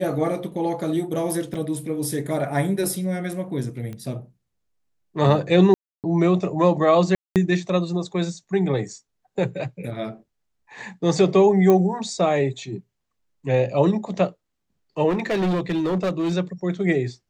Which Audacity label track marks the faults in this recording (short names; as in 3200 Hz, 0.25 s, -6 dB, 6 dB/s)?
1.540000	1.540000	gap 2.9 ms
3.930000	3.930000	pop -23 dBFS
5.740000	6.040000	gap 0.298 s
7.150000	7.360000	gap 0.208 s
11.700000	11.700000	pop -8 dBFS
15.090000	16.340000	clipped -19 dBFS